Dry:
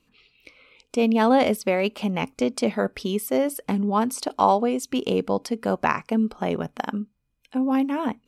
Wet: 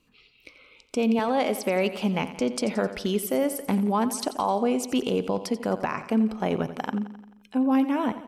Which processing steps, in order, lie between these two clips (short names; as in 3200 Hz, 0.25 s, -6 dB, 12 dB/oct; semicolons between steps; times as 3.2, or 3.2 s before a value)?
1.19–1.64 HPF 260 Hz 12 dB/oct; limiter -15 dBFS, peak gain reduction 10 dB; feedback echo 87 ms, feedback 58%, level -13.5 dB